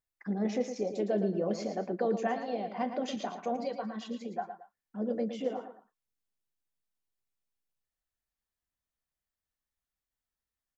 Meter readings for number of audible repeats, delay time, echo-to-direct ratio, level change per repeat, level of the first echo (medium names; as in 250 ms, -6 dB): 2, 113 ms, -8.5 dB, -9.5 dB, -9.0 dB